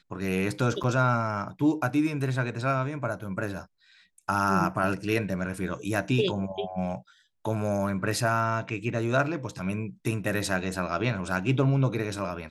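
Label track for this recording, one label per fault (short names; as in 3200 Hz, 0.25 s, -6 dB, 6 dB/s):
0.830000	0.840000	gap 6.8 ms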